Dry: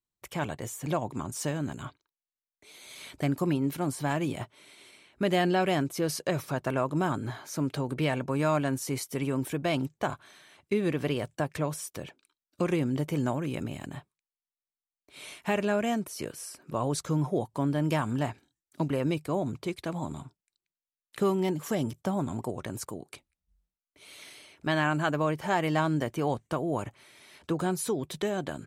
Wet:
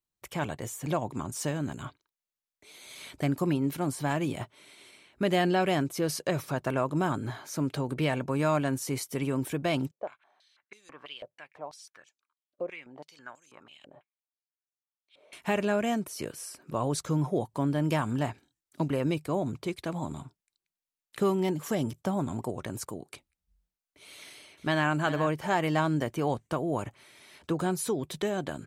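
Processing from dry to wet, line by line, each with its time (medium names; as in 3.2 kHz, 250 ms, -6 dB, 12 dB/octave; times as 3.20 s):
9.91–15.33 s: step-sequenced band-pass 6.1 Hz 550–6500 Hz
24.17–24.87 s: echo throw 400 ms, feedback 15%, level -11.5 dB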